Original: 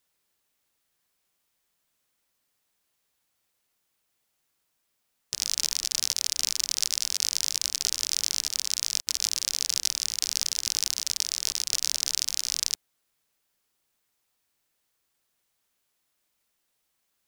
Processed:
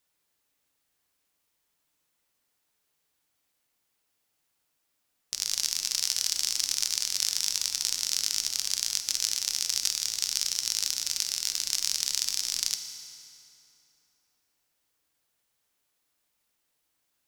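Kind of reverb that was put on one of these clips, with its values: FDN reverb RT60 3 s, high-frequency decay 0.75×, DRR 6.5 dB; gain -1.5 dB

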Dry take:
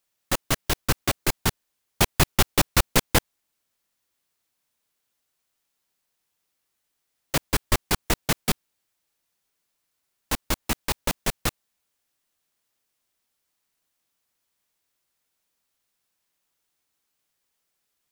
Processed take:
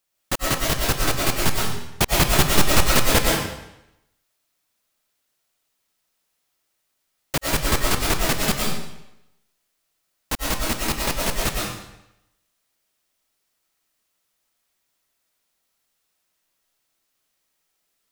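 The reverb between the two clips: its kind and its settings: digital reverb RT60 0.86 s, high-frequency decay 0.95×, pre-delay 75 ms, DRR -2.5 dB

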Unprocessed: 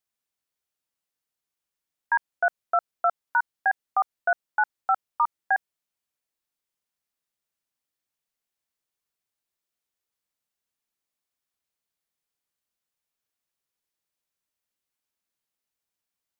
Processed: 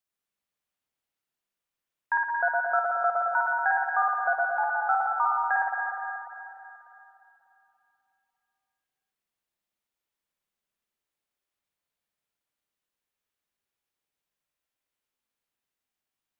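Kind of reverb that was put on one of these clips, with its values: spring tank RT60 3 s, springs 54/59 ms, chirp 50 ms, DRR -3.5 dB; gain -3.5 dB

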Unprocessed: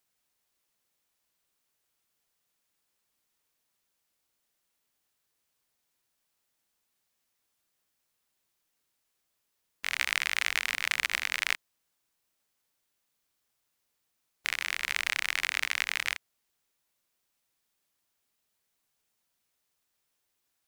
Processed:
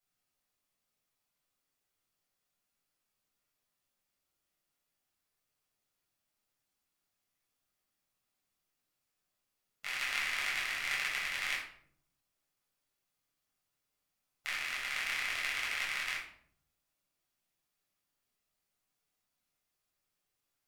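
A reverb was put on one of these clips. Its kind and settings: shoebox room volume 880 m³, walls furnished, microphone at 6.9 m; gain -13 dB

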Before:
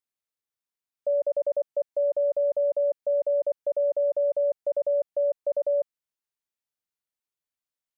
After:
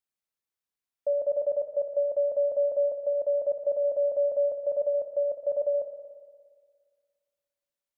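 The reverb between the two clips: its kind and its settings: spring tank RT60 1.8 s, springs 58 ms, chirp 25 ms, DRR 6.5 dB; gain -1 dB

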